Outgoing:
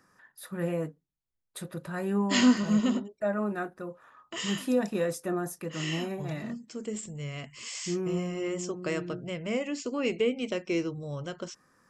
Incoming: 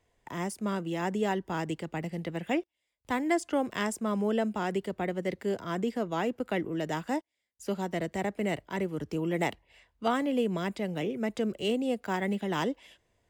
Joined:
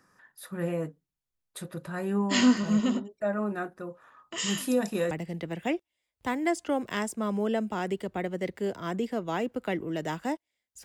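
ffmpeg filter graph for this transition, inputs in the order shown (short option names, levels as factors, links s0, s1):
-filter_complex "[0:a]asettb=1/sr,asplit=3[s0][s1][s2];[s0]atrim=end=4.384[s3];[s1]atrim=start=4.38:end=5.11,asetpts=PTS-STARTPTS,afade=t=in:d=0.004:c=qsin,afade=t=out:st=0.726:d=0.004:c=qsin,highshelf=f=5500:g=10.5[s4];[s2]atrim=start=5.106[s5];[s3][s4]acrossfade=d=0.004:c1=hsin:c2=qsin[s6];[s6][s5]acrossfade=d=0.004:c1=qsin:c2=hsin,apad=whole_dur=10.84,atrim=end=10.84,atrim=end=5.112[s7];[1:a]atrim=start=1.948:end=7.68[s8];[s7][s8]acrossfade=d=0.004:c1=hsin:c2=hsin"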